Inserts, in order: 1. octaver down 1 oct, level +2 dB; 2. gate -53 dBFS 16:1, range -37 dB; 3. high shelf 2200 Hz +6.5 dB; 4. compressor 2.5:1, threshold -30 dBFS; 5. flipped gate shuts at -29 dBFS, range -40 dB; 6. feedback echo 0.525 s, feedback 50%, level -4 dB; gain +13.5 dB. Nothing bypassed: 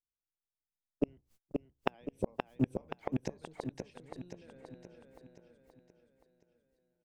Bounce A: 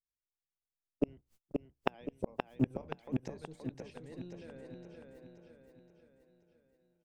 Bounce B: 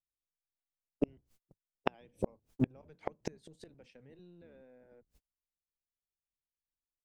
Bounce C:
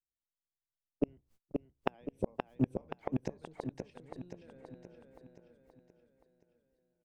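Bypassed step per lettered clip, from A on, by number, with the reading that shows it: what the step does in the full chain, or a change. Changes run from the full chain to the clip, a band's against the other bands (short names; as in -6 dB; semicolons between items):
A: 4, mean gain reduction 5.0 dB; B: 6, echo-to-direct -3.0 dB to none; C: 3, 4 kHz band -4.0 dB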